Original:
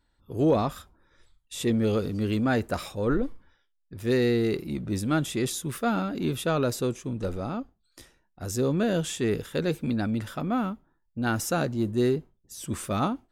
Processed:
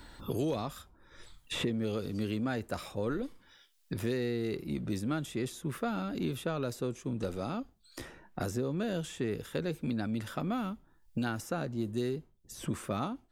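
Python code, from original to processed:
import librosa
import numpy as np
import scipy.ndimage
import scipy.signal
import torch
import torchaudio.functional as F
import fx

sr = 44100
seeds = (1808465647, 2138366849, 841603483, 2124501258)

y = fx.band_squash(x, sr, depth_pct=100)
y = y * 10.0 ** (-8.5 / 20.0)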